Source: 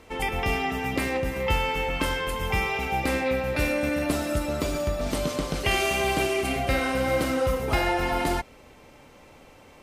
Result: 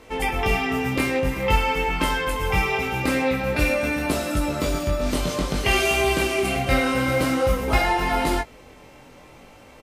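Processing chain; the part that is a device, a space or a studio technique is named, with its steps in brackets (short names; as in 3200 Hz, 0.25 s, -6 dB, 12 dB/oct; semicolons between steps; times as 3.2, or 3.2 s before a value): double-tracked vocal (doubler 16 ms -12 dB; chorus 0.5 Hz, delay 18 ms, depth 5.6 ms); gain +6.5 dB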